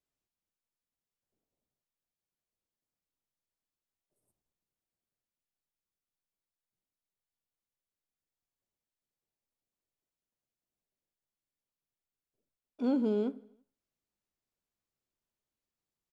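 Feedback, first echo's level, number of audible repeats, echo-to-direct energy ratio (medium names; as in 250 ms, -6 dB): 59%, -24.0 dB, 3, -22.0 dB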